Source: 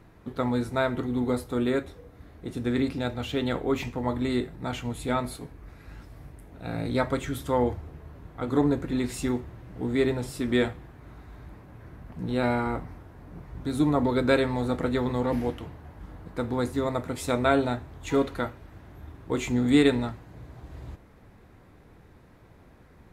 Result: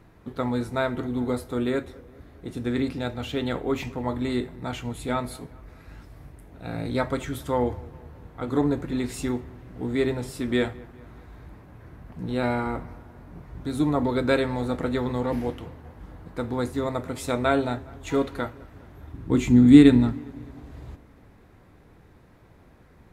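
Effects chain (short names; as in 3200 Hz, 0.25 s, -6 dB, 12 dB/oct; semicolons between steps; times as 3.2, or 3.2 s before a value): 19.13–20.13 resonant low shelf 370 Hz +8 dB, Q 1.5; dark delay 0.205 s, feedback 55%, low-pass 2300 Hz, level -22.5 dB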